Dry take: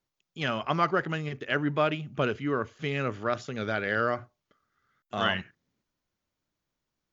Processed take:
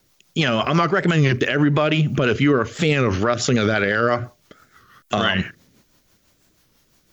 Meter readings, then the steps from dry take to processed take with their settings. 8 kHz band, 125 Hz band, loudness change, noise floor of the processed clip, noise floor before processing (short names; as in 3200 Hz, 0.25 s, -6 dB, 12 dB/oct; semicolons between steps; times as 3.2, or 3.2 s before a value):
n/a, +14.0 dB, +10.5 dB, -62 dBFS, under -85 dBFS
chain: high shelf 6200 Hz +9 dB; compressor 5:1, threshold -31 dBFS, peak gain reduction 11 dB; rotary speaker horn 6 Hz; maximiser +31 dB; record warp 33 1/3 rpm, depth 160 cents; gain -7 dB